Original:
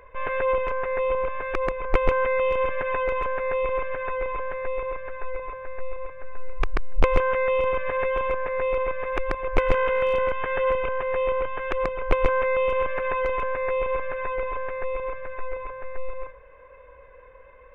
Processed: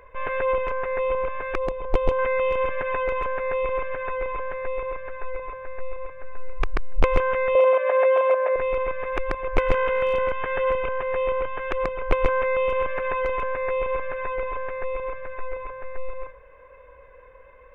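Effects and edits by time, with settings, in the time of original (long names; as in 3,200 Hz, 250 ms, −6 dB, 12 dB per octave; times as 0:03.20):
0:01.58–0:02.19: flat-topped bell 1,700 Hz −9.5 dB 1.3 octaves
0:07.55–0:08.56: high-pass with resonance 600 Hz, resonance Q 4.2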